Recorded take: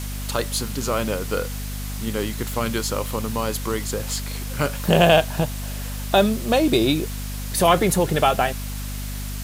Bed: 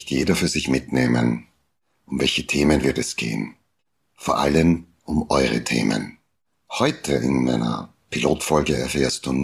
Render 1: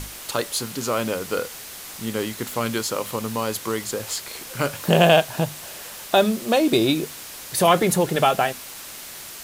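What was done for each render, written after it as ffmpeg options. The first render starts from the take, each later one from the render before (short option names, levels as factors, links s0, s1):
-af "bandreject=f=50:t=h:w=6,bandreject=f=100:t=h:w=6,bandreject=f=150:t=h:w=6,bandreject=f=200:t=h:w=6,bandreject=f=250:t=h:w=6"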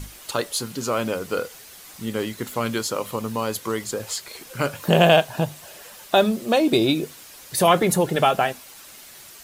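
-af "afftdn=nr=8:nf=-38"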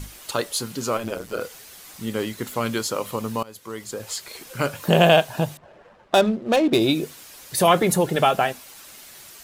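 -filter_complex "[0:a]asettb=1/sr,asplit=3[s0][s1][s2];[s0]atrim=end=0.974[s3];[s1]atrim=start=0.97:end=1.41,asetpts=PTS-STARTPTS,afade=t=in:d=0.004:c=qsin,afade=t=out:st=0.436:d=0.004:c=qsin,tremolo=f=120:d=0.824[s4];[s2]atrim=start=1.406[s5];[s3][s4]acrossfade=d=0.004:c1=hsin:c2=qsin[s6];[s6][s5]acrossfade=d=0.004:c1=qsin:c2=hsin,asettb=1/sr,asplit=3[s7][s8][s9];[s7]atrim=end=5.574[s10];[s8]atrim=start=5.57:end=6.8,asetpts=PTS-STARTPTS,afade=t=in:d=0.004:c=qsin,afade=t=out:st=1.226:d=0.004:c=qsin,adynamicsmooth=sensitivity=3:basefreq=960[s11];[s9]atrim=start=6.796[s12];[s10][s11]acrossfade=d=0.004:c1=hsin:c2=qsin[s13];[s13][s12]acrossfade=d=0.004:c1=qsin:c2=hsin,asplit=2[s14][s15];[s14]atrim=end=3.43,asetpts=PTS-STARTPTS,afade=t=out:st=3.426:d=0.004:c=hsin:silence=0.0891251[s16];[s15]atrim=start=3.43,asetpts=PTS-STARTPTS,afade=t=in:d=0.87:silence=0.0891251[s17];[s16][s17]concat=n=2:v=0:a=1"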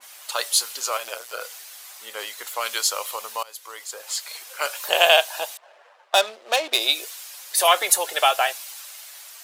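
-af "highpass=f=620:w=0.5412,highpass=f=620:w=1.3066,adynamicequalizer=threshold=0.0141:dfrequency=2300:dqfactor=0.7:tfrequency=2300:tqfactor=0.7:attack=5:release=100:ratio=0.375:range=4:mode=boostabove:tftype=highshelf"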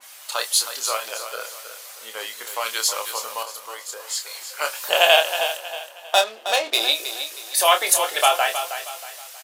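-filter_complex "[0:a]asplit=2[s0][s1];[s1]adelay=27,volume=0.447[s2];[s0][s2]amix=inputs=2:normalize=0,asplit=2[s3][s4];[s4]aecho=0:1:317|634|951|1268:0.316|0.114|0.041|0.0148[s5];[s3][s5]amix=inputs=2:normalize=0"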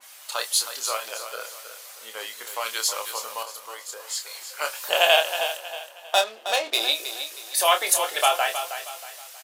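-af "volume=0.708"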